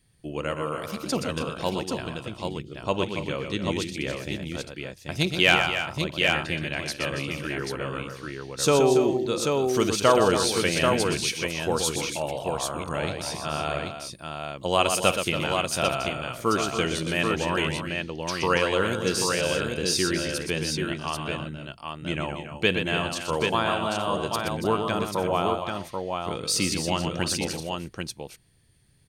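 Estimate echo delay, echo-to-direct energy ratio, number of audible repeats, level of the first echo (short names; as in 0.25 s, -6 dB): 53 ms, -1.5 dB, 5, -18.5 dB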